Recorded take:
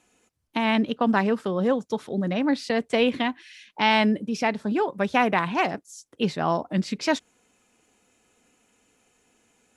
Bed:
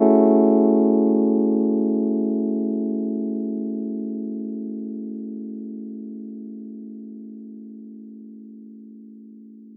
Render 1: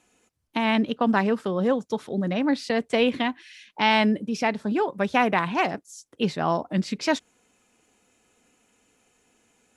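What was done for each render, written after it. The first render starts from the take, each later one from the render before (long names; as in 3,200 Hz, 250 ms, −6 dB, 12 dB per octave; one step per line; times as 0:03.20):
no processing that can be heard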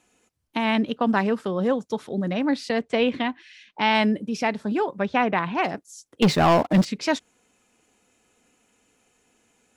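0:02.79–0:03.95: high-frequency loss of the air 71 metres
0:04.98–0:05.64: high-frequency loss of the air 130 metres
0:06.22–0:06.85: leveller curve on the samples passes 3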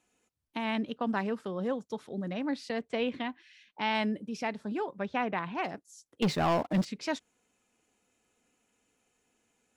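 level −9.5 dB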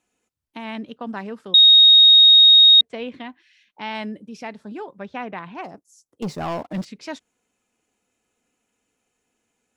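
0:01.54–0:02.81: beep over 3,740 Hz −7 dBFS
0:05.61–0:06.41: flat-topped bell 2,500 Hz −8 dB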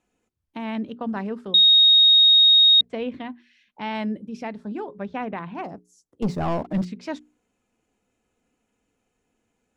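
spectral tilt −2 dB per octave
mains-hum notches 60/120/180/240/300/360/420 Hz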